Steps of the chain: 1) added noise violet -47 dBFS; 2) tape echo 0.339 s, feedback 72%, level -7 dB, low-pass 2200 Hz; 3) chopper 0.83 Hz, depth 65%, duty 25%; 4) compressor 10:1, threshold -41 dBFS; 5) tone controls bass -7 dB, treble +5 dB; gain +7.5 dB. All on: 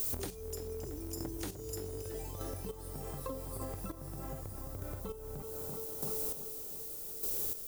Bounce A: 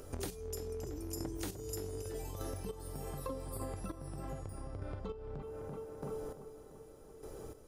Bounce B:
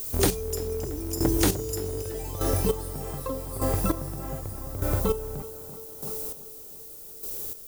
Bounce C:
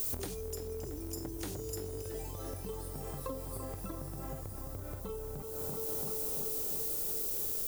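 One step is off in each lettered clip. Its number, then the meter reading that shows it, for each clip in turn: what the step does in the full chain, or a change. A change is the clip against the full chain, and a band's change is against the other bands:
1, 8 kHz band -5.5 dB; 4, mean gain reduction 8.5 dB; 3, crest factor change -2.0 dB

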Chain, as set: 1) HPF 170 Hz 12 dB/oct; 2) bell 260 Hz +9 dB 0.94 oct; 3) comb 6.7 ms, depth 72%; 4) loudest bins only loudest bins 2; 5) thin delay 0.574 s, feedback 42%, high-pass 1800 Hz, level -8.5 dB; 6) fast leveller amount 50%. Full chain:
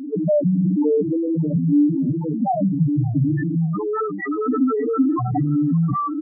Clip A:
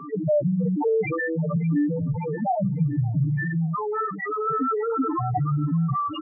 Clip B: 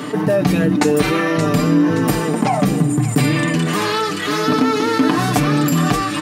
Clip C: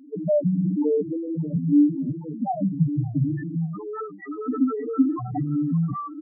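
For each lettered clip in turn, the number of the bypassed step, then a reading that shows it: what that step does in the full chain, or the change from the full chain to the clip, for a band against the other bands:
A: 2, 2 kHz band +7.5 dB; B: 4, 2 kHz band +13.5 dB; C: 6, crest factor change +4.0 dB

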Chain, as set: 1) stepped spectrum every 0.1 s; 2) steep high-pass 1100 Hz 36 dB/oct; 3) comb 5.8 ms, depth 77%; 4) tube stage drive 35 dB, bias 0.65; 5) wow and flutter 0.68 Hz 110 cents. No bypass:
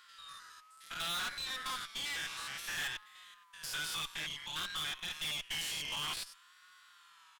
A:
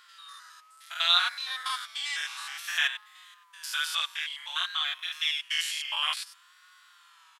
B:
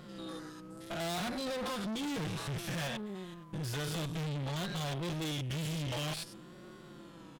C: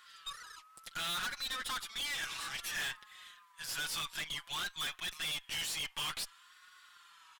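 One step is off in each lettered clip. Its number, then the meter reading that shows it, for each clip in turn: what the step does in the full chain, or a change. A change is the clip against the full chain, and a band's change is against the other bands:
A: 4, crest factor change +13.5 dB; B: 2, 125 Hz band +20.5 dB; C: 1, momentary loudness spread change -4 LU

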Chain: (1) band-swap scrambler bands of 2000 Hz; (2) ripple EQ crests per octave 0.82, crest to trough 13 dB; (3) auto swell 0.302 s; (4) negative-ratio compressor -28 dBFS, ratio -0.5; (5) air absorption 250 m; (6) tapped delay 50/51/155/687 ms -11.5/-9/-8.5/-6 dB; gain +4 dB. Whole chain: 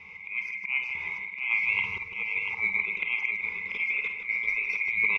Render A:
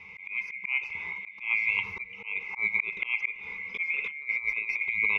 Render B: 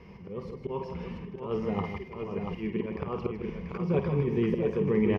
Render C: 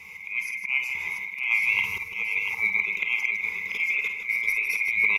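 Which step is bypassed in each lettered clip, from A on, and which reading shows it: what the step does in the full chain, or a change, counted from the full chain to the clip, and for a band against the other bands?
6, echo-to-direct -2.5 dB to none; 1, 2 kHz band -35.0 dB; 5, 4 kHz band +4.0 dB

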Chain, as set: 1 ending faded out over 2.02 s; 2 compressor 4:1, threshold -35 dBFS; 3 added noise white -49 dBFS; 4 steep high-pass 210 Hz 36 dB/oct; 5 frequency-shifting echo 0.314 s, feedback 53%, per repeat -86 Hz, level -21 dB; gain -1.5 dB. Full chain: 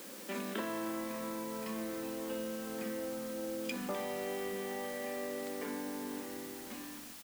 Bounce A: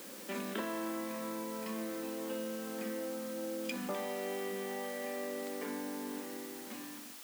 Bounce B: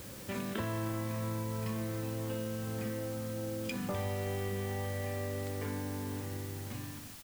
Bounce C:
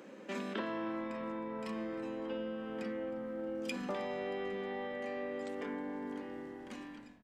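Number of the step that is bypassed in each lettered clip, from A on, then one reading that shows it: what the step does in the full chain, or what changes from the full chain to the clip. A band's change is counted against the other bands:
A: 5, echo-to-direct -19.5 dB to none; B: 4, 125 Hz band +18.5 dB; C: 3, 8 kHz band -14.5 dB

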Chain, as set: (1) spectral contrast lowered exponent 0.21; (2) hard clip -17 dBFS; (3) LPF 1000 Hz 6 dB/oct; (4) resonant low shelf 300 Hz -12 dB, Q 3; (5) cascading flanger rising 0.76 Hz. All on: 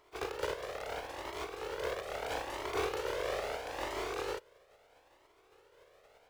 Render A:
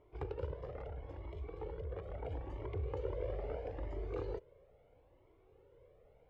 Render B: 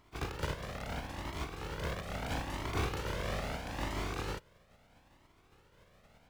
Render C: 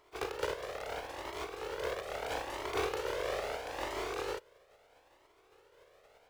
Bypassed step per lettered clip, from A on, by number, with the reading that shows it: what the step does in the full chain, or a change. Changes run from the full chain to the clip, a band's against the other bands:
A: 1, 125 Hz band +18.5 dB; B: 4, 125 Hz band +14.0 dB; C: 2, distortion -21 dB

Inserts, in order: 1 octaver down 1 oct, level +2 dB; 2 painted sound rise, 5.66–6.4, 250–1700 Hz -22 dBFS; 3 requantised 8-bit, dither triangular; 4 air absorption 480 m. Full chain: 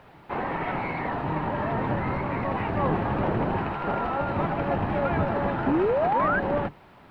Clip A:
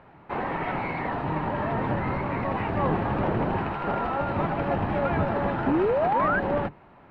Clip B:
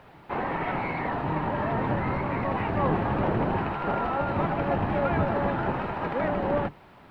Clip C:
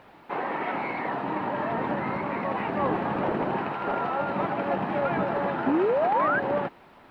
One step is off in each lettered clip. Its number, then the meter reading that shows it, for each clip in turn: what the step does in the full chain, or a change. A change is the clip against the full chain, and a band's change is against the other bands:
3, distortion -23 dB; 2, momentary loudness spread change -2 LU; 1, 125 Hz band -8.0 dB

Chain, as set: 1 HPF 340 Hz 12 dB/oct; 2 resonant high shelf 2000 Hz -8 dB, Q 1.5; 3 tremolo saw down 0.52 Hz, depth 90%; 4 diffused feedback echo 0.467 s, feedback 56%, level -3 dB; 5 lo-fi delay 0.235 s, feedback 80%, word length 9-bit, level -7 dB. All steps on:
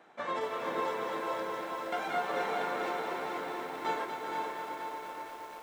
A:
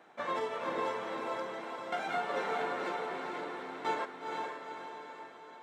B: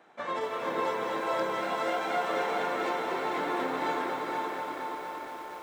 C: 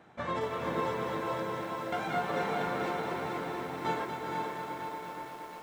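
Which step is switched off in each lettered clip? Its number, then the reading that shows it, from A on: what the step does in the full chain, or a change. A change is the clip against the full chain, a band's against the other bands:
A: 5, 8 kHz band -2.5 dB; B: 3, 250 Hz band +2.0 dB; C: 1, 125 Hz band +13.5 dB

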